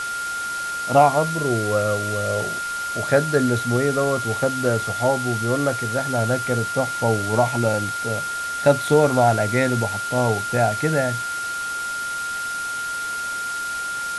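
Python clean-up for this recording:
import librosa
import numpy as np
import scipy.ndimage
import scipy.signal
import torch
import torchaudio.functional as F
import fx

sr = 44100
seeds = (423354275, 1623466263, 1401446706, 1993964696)

y = fx.notch(x, sr, hz=1400.0, q=30.0)
y = fx.noise_reduce(y, sr, print_start_s=12.59, print_end_s=13.09, reduce_db=30.0)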